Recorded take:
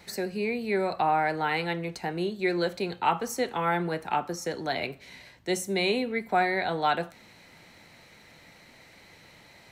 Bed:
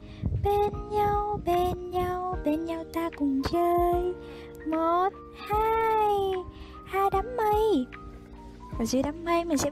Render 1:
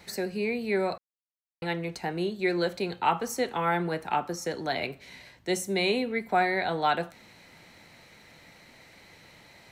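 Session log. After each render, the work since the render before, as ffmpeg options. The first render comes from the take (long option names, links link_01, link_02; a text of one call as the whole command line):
ffmpeg -i in.wav -filter_complex "[0:a]asplit=3[link_01][link_02][link_03];[link_01]atrim=end=0.98,asetpts=PTS-STARTPTS,afade=type=out:start_time=0.976:duration=0.004:curve=hsin[link_04];[link_02]atrim=start=0.98:end=1.62,asetpts=PTS-STARTPTS,volume=0[link_05];[link_03]atrim=start=1.62,asetpts=PTS-STARTPTS,afade=type=in:duration=0.004:curve=hsin[link_06];[link_04][link_05][link_06]concat=n=3:v=0:a=1" out.wav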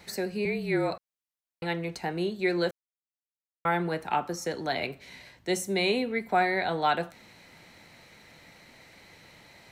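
ffmpeg -i in.wav -filter_complex "[0:a]asettb=1/sr,asplit=3[link_01][link_02][link_03];[link_01]atrim=end=0.454[link_04];[link_02]atrim=start=0.45:end=0.91,asetpts=PTS-STARTPTS,afade=type=in:duration=0.004:curve=qsin,afade=type=out:start_time=0.456:duration=0.004:curve=qsin,afreqshift=-36[link_05];[link_03]atrim=start=0.906[link_06];[link_04][link_05]acrossfade=duration=0.004:curve1=hsin:curve2=qsin[link_07];[link_07][link_06]acrossfade=duration=0.004:curve1=qsin:curve2=hsin,asplit=3[link_08][link_09][link_10];[link_08]atrim=end=2.71,asetpts=PTS-STARTPTS,afade=type=out:start_time=2.706:duration=0.004:curve=hsin[link_11];[link_09]atrim=start=2.71:end=3.65,asetpts=PTS-STARTPTS,volume=0[link_12];[link_10]atrim=start=3.65,asetpts=PTS-STARTPTS,afade=type=in:duration=0.004:curve=hsin[link_13];[link_11][link_12][link_13]concat=n=3:v=0:a=1" out.wav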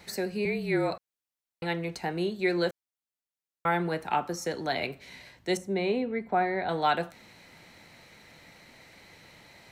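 ffmpeg -i in.wav -filter_complex "[0:a]asettb=1/sr,asplit=3[link_01][link_02][link_03];[link_01]atrim=end=5.574[link_04];[link_02]atrim=start=5.57:end=6.69,asetpts=PTS-STARTPTS,afade=type=in:duration=0.004:curve=qsin,afade=type=out:start_time=1.116:duration=0.004:curve=qsin,lowpass=frequency=1100:poles=1[link_05];[link_03]atrim=start=6.686[link_06];[link_04][link_05]acrossfade=duration=0.004:curve1=hsin:curve2=qsin[link_07];[link_07][link_06]acrossfade=duration=0.004:curve1=qsin:curve2=hsin" out.wav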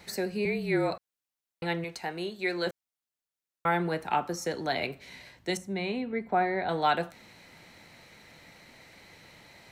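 ffmpeg -i in.wav -filter_complex "[0:a]asettb=1/sr,asplit=3[link_01][link_02][link_03];[link_01]atrim=end=1.844[link_04];[link_02]atrim=start=1.84:end=2.67,asetpts=PTS-STARTPTS,afade=type=in:duration=0.004:curve=qsin,afade=type=out:start_time=0.826:duration=0.004:curve=qsin,lowshelf=frequency=420:gain=-9.5[link_05];[link_03]atrim=start=2.666[link_06];[link_04][link_05]acrossfade=duration=0.004:curve1=hsin:curve2=qsin[link_07];[link_07][link_06]acrossfade=duration=0.004:curve1=qsin:curve2=hsin,asettb=1/sr,asplit=3[link_08][link_09][link_10];[link_08]atrim=end=5.504[link_11];[link_09]atrim=start=5.5:end=6.13,asetpts=PTS-STARTPTS,afade=type=in:duration=0.004:curve=qsin,afade=type=out:start_time=0.626:duration=0.004:curve=qsin,equalizer=frequency=450:width=1.5:gain=-8.5[link_12];[link_10]atrim=start=6.126[link_13];[link_11][link_12]acrossfade=duration=0.004:curve1=hsin:curve2=qsin[link_14];[link_14][link_13]acrossfade=duration=0.004:curve1=qsin:curve2=hsin" out.wav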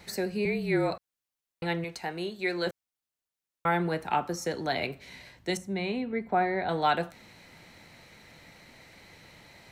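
ffmpeg -i in.wav -af "lowshelf=frequency=140:gain=4" out.wav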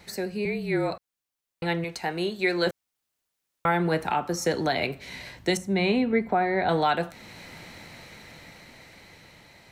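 ffmpeg -i in.wav -af "dynaudnorm=framelen=620:gausssize=7:maxgain=10dB,alimiter=limit=-13.5dB:level=0:latency=1:release=489" out.wav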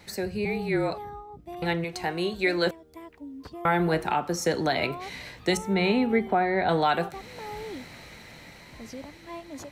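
ffmpeg -i in.wav -i bed.wav -filter_complex "[1:a]volume=-14.5dB[link_01];[0:a][link_01]amix=inputs=2:normalize=0" out.wav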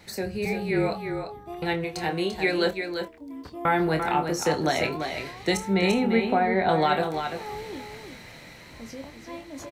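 ffmpeg -i in.wav -filter_complex "[0:a]asplit=2[link_01][link_02];[link_02]adelay=26,volume=-8dB[link_03];[link_01][link_03]amix=inputs=2:normalize=0,asplit=2[link_04][link_05];[link_05]aecho=0:1:343:0.447[link_06];[link_04][link_06]amix=inputs=2:normalize=0" out.wav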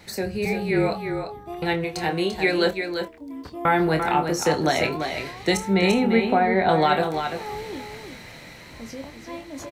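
ffmpeg -i in.wav -af "volume=3dB" out.wav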